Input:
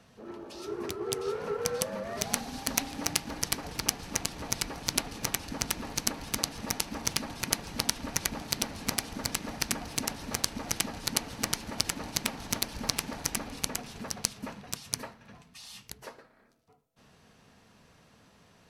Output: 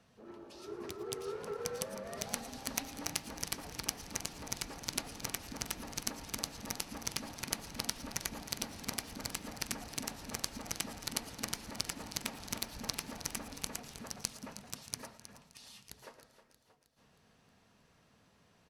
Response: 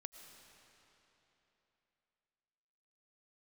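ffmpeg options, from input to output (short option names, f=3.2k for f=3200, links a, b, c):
-filter_complex "[0:a]aecho=1:1:315|630|945|1260|1575|1890:0.211|0.118|0.0663|0.0371|0.0208|0.0116[a];[1:a]atrim=start_sample=2205,afade=t=out:st=0.17:d=0.01,atrim=end_sample=7938[b];[a][b]afir=irnorm=-1:irlink=0,volume=-2dB"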